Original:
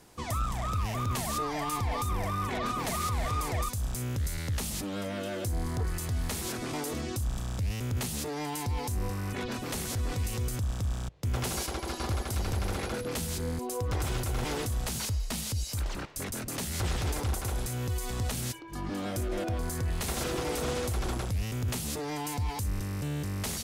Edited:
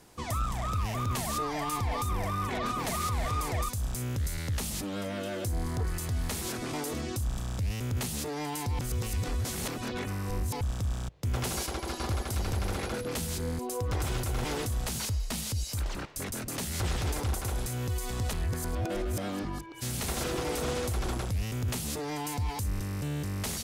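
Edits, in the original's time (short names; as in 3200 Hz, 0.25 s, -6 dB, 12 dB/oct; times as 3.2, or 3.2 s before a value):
8.79–10.61 reverse
18.33–20.01 reverse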